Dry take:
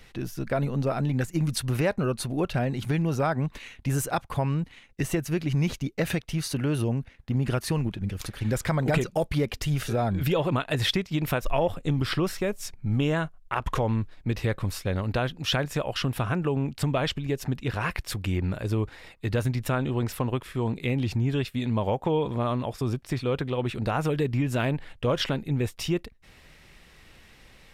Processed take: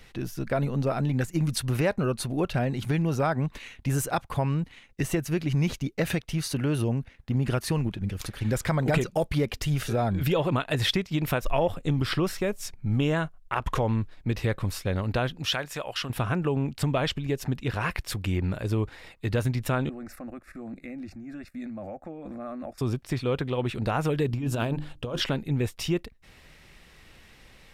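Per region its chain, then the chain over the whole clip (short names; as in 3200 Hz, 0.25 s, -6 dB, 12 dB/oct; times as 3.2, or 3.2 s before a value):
15.48–16.1 low shelf 470 Hz -12 dB + notches 50/100 Hz
19.89–22.78 high shelf 8700 Hz -11.5 dB + level quantiser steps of 11 dB + fixed phaser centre 640 Hz, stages 8
24.26–25.2 bell 2000 Hz -10 dB 0.48 oct + notches 50/100/150/200/250/300/350 Hz + negative-ratio compressor -27 dBFS, ratio -0.5
whole clip: dry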